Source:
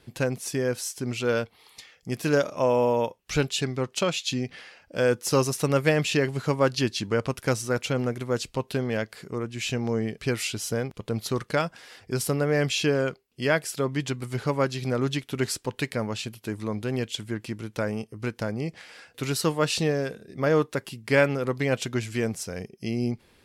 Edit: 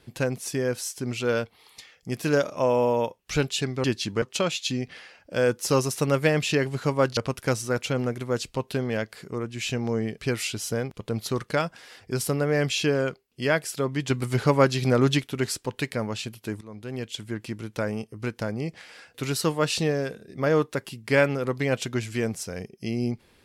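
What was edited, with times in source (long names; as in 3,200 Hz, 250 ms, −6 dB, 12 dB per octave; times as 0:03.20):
0:06.79–0:07.17: move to 0:03.84
0:14.10–0:15.27: clip gain +5.5 dB
0:16.61–0:17.66: fade in equal-power, from −18 dB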